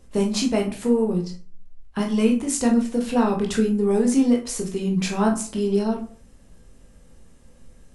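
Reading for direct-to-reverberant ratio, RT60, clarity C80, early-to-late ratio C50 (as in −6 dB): 0.5 dB, 0.45 s, 15.5 dB, 9.0 dB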